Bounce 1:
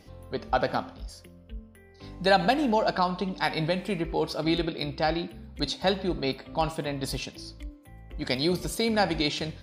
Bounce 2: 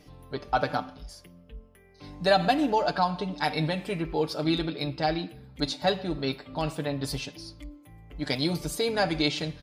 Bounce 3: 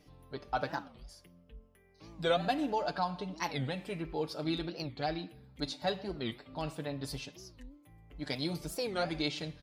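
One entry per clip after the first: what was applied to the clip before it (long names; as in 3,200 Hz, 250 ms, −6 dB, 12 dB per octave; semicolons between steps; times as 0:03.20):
comb filter 6.8 ms, depth 62%; level −2 dB
wow of a warped record 45 rpm, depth 250 cents; level −8 dB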